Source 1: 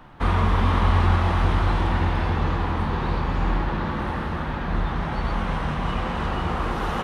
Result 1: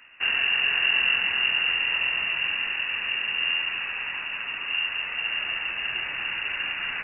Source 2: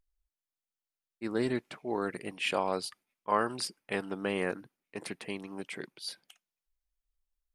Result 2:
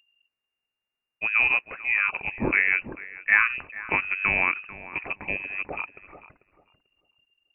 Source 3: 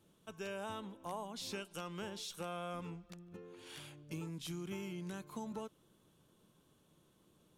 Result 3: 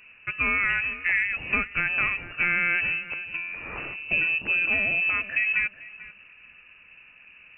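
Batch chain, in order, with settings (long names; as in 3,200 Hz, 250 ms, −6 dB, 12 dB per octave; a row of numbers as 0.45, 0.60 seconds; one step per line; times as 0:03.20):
voice inversion scrambler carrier 2,800 Hz
feedback echo with a low-pass in the loop 442 ms, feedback 23%, low-pass 1,100 Hz, level −12 dB
loudness normalisation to −24 LKFS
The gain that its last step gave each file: −6.0, +8.5, +19.0 decibels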